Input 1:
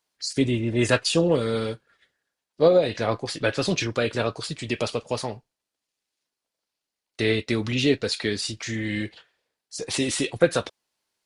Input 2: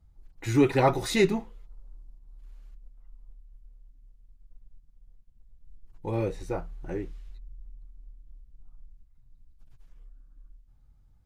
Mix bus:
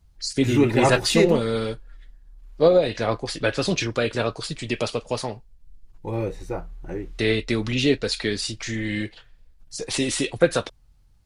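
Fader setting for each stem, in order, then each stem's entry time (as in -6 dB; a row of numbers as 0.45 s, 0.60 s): +1.0 dB, +2.0 dB; 0.00 s, 0.00 s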